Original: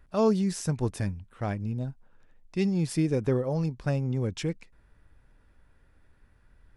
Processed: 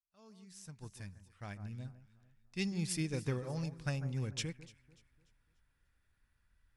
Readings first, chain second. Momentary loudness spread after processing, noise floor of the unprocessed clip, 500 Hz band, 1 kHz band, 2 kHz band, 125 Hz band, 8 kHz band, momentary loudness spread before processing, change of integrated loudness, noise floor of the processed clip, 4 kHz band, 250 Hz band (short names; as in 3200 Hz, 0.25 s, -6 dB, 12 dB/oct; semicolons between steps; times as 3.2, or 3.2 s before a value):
17 LU, -62 dBFS, -16.5 dB, -15.5 dB, -4.5 dB, -10.0 dB, -4.0 dB, 10 LU, -10.5 dB, -77 dBFS, -2.5 dB, -13.0 dB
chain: opening faded in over 2.05 s; passive tone stack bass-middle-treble 5-5-5; echo with dull and thin repeats by turns 0.147 s, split 1700 Hz, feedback 59%, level -10 dB; upward expander 1.5:1, over -56 dBFS; gain +8 dB